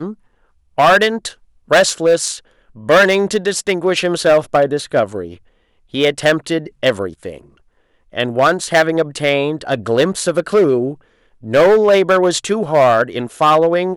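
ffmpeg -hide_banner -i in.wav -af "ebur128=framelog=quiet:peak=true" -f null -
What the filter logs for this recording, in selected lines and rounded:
Integrated loudness:
  I:         -14.6 LUFS
  Threshold: -25.6 LUFS
Loudness range:
  LRA:         4.6 LU
  Threshold: -35.9 LUFS
  LRA low:   -18.6 LUFS
  LRA high:  -14.0 LUFS
True peak:
  Peak:       -2.4 dBFS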